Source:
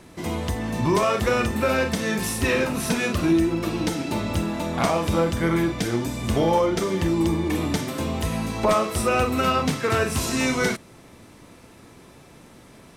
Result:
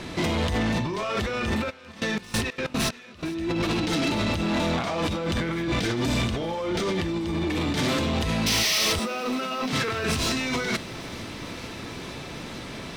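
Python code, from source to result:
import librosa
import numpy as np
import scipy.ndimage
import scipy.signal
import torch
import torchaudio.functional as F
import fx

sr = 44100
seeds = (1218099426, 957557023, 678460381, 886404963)

y = fx.tracing_dist(x, sr, depth_ms=0.023)
y = fx.curve_eq(y, sr, hz=(1000.0, 3900.0, 11000.0), db=(0, 6, -10))
y = fx.over_compress(y, sr, threshold_db=-29.0, ratio=-1.0)
y = fx.step_gate(y, sr, bpm=186, pattern='x.x.xx....xx..x', floor_db=-24.0, edge_ms=4.5, at=(1.69, 3.34), fade=0.02)
y = fx.spec_paint(y, sr, seeds[0], shape='noise', start_s=8.46, length_s=0.47, low_hz=1800.0, high_hz=6300.0, level_db=-22.0)
y = fx.cheby_ripple_highpass(y, sr, hz=170.0, ripple_db=3, at=(8.99, 9.73))
y = 10.0 ** (-26.0 / 20.0) * np.tanh(y / 10.0 ** (-26.0 / 20.0))
y = fx.echo_thinned(y, sr, ms=455, feedback_pct=85, hz=720.0, wet_db=-21.0)
y = y * 10.0 ** (5.5 / 20.0)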